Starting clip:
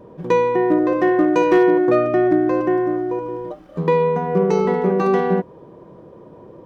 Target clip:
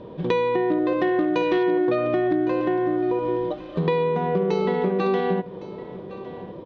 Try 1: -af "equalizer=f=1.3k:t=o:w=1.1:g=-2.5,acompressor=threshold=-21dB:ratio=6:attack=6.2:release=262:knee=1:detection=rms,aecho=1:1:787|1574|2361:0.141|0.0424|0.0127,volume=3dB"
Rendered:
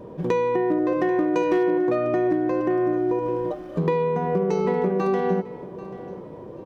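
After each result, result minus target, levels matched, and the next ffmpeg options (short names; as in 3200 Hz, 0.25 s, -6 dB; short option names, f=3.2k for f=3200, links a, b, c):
4000 Hz band -8.0 dB; echo 0.323 s early
-af "equalizer=f=1.3k:t=o:w=1.1:g=-2.5,acompressor=threshold=-21dB:ratio=6:attack=6.2:release=262:knee=1:detection=rms,lowpass=f=3.7k:t=q:w=3.3,aecho=1:1:787|1574|2361:0.141|0.0424|0.0127,volume=3dB"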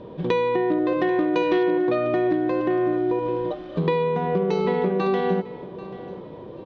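echo 0.323 s early
-af "equalizer=f=1.3k:t=o:w=1.1:g=-2.5,acompressor=threshold=-21dB:ratio=6:attack=6.2:release=262:knee=1:detection=rms,lowpass=f=3.7k:t=q:w=3.3,aecho=1:1:1110|2220|3330:0.141|0.0424|0.0127,volume=3dB"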